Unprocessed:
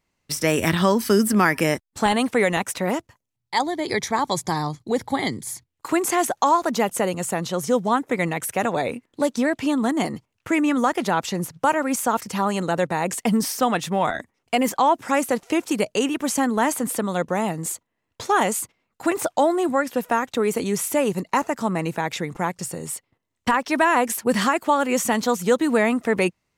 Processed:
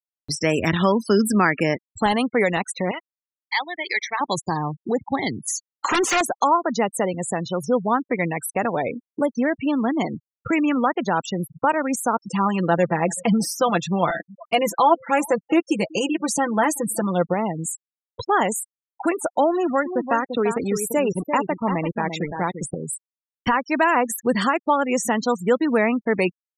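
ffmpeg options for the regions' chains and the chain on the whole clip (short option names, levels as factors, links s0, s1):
-filter_complex "[0:a]asettb=1/sr,asplit=3[s0][s1][s2];[s0]atrim=end=2.914[s3];[s1]atrim=start=2.91:end=4.21,asetpts=PTS-STARTPTS,afade=t=in:d=0.004:c=qsin,afade=t=out:st=1.296:d=0.004:c=qsin,acontrast=68,bandpass=f=2400:t=q:w=1.4[s4];[s2]atrim=start=4.206[s5];[s3][s4]acrossfade=d=0.004:c1=hsin:c2=qsin[s6];[s6][s5]acrossfade=d=0.004:c1=qsin:c2=hsin,asettb=1/sr,asplit=3[s7][s8][s9];[s7]atrim=end=5.484[s10];[s8]atrim=start=5.48:end=6.21,asetpts=PTS-STARTPTS,afade=t=in:d=0.004:c=qsin,afade=t=out:st=0.726:d=0.004:c=qsin,equalizer=f=6400:t=o:w=0.33:g=9,aeval=exprs='0.1*(abs(mod(val(0)/0.1+3,4)-2)-1)':c=same,asplit=2[s11][s12];[s12]highpass=f=720:p=1,volume=14.1,asoftclip=type=tanh:threshold=0.282[s13];[s11][s13]amix=inputs=2:normalize=0,lowpass=f=3600:p=1,volume=0.501[s14];[s9]atrim=start=6.206[s15];[s10][s14]acrossfade=d=0.004:c1=hsin:c2=qsin[s16];[s16][s15]acrossfade=d=0.004:c1=qsin:c2=hsin,asettb=1/sr,asplit=3[s17][s18][s19];[s17]atrim=end=12.254[s20];[s18]atrim=start=12.25:end=17.34,asetpts=PTS-STARTPTS,afade=t=in:d=0.004:c=qsin,afade=t=out:st=5.086:d=0.004:c=qsin,aecho=1:1:5.9:0.68,atrim=end_sample=224469,aecho=1:1:381:0.0708,atrim=end_sample=224469[s21];[s19]atrim=start=17.336[s22];[s20][s21]acrossfade=d=0.004:c1=hsin:c2=qsin[s23];[s23][s22]acrossfade=d=0.004:c1=qsin:c2=hsin,asettb=1/sr,asplit=3[s24][s25][s26];[s24]atrim=end=19.514[s27];[s25]atrim=start=19.51:end=22.75,asetpts=PTS-STARTPTS,afade=t=in:d=0.004:c=qsin,afade=t=out:st=3.236:d=0.004:c=qsin,acrusher=bits=4:mix=0:aa=0.5,aecho=1:1:343:0.398,atrim=end_sample=142884[s28];[s26]atrim=start=22.746[s29];[s27][s28]acrossfade=d=0.004:c1=hsin:c2=qsin[s30];[s30][s29]acrossfade=d=0.004:c1=qsin:c2=hsin,afftfilt=real='re*gte(hypot(re,im),0.0562)':imag='im*gte(hypot(re,im),0.0562)':win_size=1024:overlap=0.75,acompressor=mode=upward:threshold=0.0794:ratio=2.5"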